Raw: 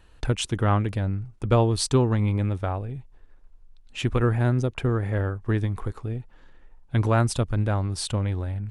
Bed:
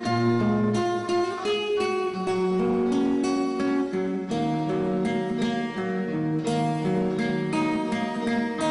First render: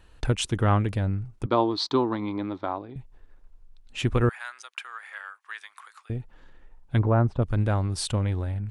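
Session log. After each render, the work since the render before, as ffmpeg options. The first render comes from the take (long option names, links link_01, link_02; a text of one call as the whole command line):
ffmpeg -i in.wav -filter_complex "[0:a]asettb=1/sr,asplit=3[link_01][link_02][link_03];[link_01]atrim=end=1.464[link_04];[link_02]atrim=start=1.46:end=2.96,asetpts=PTS-STARTPTS,afade=type=in:duration=0.004:curve=qsin,afade=type=out:start_time=1.496:duration=0.004:curve=qsin,highpass=290,equalizer=frequency=310:width_type=q:width=4:gain=8,equalizer=frequency=470:width_type=q:width=4:gain=-6,equalizer=frequency=1000:width_type=q:width=4:gain=6,equalizer=frequency=1700:width_type=q:width=4:gain=-4,equalizer=frequency=2700:width_type=q:width=4:gain=-9,equalizer=frequency=4000:width_type=q:width=4:gain=7,lowpass=frequency=4600:width=0.5412,lowpass=frequency=4600:width=1.3066[link_05];[link_03]atrim=start=2.956[link_06];[link_04][link_05]acrossfade=duration=0.004:curve1=hsin:curve2=qsin[link_07];[link_07][link_06]acrossfade=duration=0.004:curve1=qsin:curve2=hsin,asettb=1/sr,asplit=3[link_08][link_09][link_10];[link_08]atrim=end=4.294[link_11];[link_09]atrim=start=4.29:end=6.1,asetpts=PTS-STARTPTS,afade=type=in:duration=0.004:curve=qsin,afade=type=out:start_time=1.806:duration=0.004:curve=qsin,highpass=frequency=1200:width=0.5412,highpass=frequency=1200:width=1.3066[link_12];[link_10]atrim=start=6.096[link_13];[link_11][link_12]acrossfade=duration=0.004:curve1=hsin:curve2=qsin[link_14];[link_14][link_13]acrossfade=duration=0.004:curve1=qsin:curve2=hsin,asplit=3[link_15][link_16][link_17];[link_15]afade=type=out:start_time=6.98:duration=0.02[link_18];[link_16]lowpass=1100,afade=type=in:start_time=6.98:duration=0.02,afade=type=out:start_time=7.41:duration=0.02[link_19];[link_17]afade=type=in:start_time=7.41:duration=0.02[link_20];[link_18][link_19][link_20]amix=inputs=3:normalize=0" out.wav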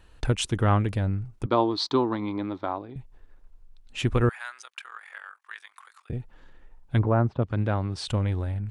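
ffmpeg -i in.wav -filter_complex "[0:a]asettb=1/sr,asplit=3[link_01][link_02][link_03];[link_01]atrim=end=4.644[link_04];[link_02]atrim=start=4.64:end=6.13,asetpts=PTS-STARTPTS,afade=type=in:duration=0.004:curve=qsin,afade=type=out:start_time=1.486:duration=0.004:curve=qsin,aeval=exprs='val(0)*sin(2*PI*22*n/s)':channel_layout=same[link_05];[link_03]atrim=start=6.126[link_06];[link_04][link_05]acrossfade=duration=0.004:curve1=hsin:curve2=qsin[link_07];[link_07][link_06]acrossfade=duration=0.004:curve1=qsin:curve2=hsin,asettb=1/sr,asplit=3[link_08][link_09][link_10];[link_08]atrim=end=7.044[link_11];[link_09]atrim=start=7.04:end=8.08,asetpts=PTS-STARTPTS,afade=type=in:duration=0.004:curve=qsin,afade=type=out:start_time=1.036:duration=0.004:curve=qsin,highpass=100,lowpass=4600[link_12];[link_10]atrim=start=8.076[link_13];[link_11][link_12]acrossfade=duration=0.004:curve1=hsin:curve2=qsin[link_14];[link_14][link_13]acrossfade=duration=0.004:curve1=qsin:curve2=hsin" out.wav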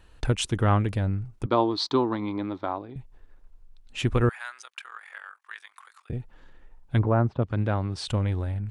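ffmpeg -i in.wav -af anull out.wav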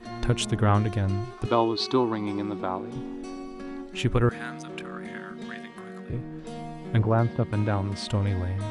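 ffmpeg -i in.wav -i bed.wav -filter_complex "[1:a]volume=-13dB[link_01];[0:a][link_01]amix=inputs=2:normalize=0" out.wav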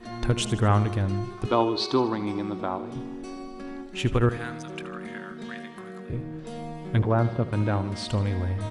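ffmpeg -i in.wav -af "aecho=1:1:77|154|231|308|385|462:0.188|0.105|0.0591|0.0331|0.0185|0.0104" out.wav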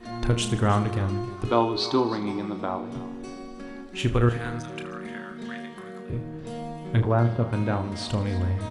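ffmpeg -i in.wav -filter_complex "[0:a]asplit=2[link_01][link_02];[link_02]adelay=34,volume=-9dB[link_03];[link_01][link_03]amix=inputs=2:normalize=0,aecho=1:1:309:0.15" out.wav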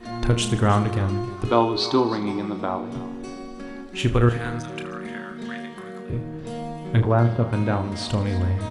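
ffmpeg -i in.wav -af "volume=3dB" out.wav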